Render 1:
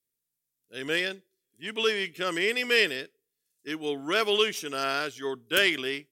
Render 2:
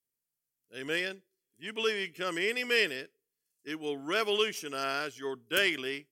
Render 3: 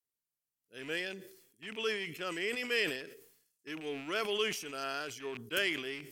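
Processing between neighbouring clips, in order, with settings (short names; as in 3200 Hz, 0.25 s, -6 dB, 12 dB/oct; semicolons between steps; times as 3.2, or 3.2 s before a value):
notch 3700 Hz, Q 6.3; gain -4 dB
rattling part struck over -53 dBFS, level -34 dBFS; sustainer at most 72 dB/s; gain -5 dB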